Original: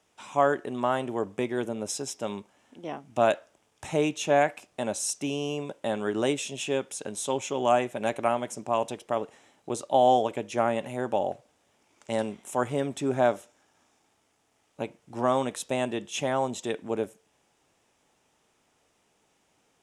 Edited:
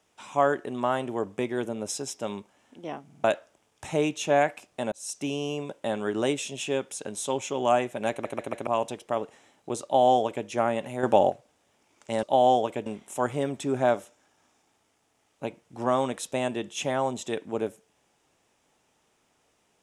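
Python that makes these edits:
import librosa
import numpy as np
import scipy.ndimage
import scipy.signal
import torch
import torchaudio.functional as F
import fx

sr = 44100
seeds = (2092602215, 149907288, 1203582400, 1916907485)

y = fx.edit(x, sr, fx.stutter_over(start_s=3.04, slice_s=0.05, count=4),
    fx.fade_in_span(start_s=4.92, length_s=0.31),
    fx.stutter_over(start_s=8.11, slice_s=0.14, count=4),
    fx.duplicate(start_s=9.84, length_s=0.63, to_s=12.23),
    fx.clip_gain(start_s=11.03, length_s=0.27, db=7.0), tone=tone)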